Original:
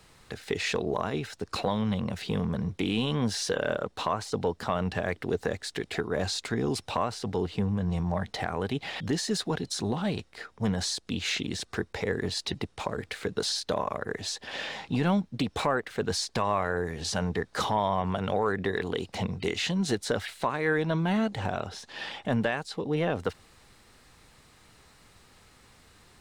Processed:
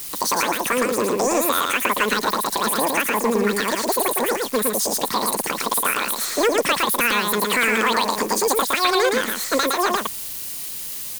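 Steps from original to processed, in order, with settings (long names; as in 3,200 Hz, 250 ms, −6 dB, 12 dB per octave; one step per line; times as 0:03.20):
spike at every zero crossing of −26 dBFS
on a send: single-tap delay 265 ms −3 dB
on the sum: wrong playback speed 33 rpm record played at 78 rpm
level +7 dB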